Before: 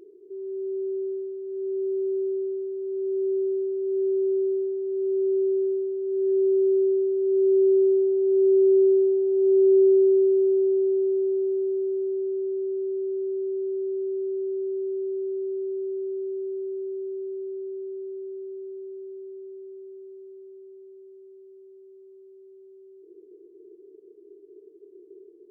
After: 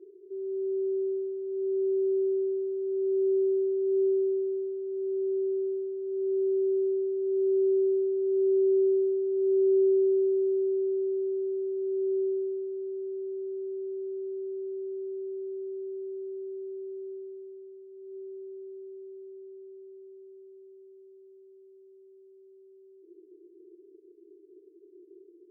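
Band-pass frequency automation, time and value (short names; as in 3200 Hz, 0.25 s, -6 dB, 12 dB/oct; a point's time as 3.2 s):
band-pass, Q 5.2
3.89 s 380 Hz
4.45 s 450 Hz
11.75 s 450 Hz
12.69 s 320 Hz
17.12 s 320 Hz
17.88 s 240 Hz
18.16 s 330 Hz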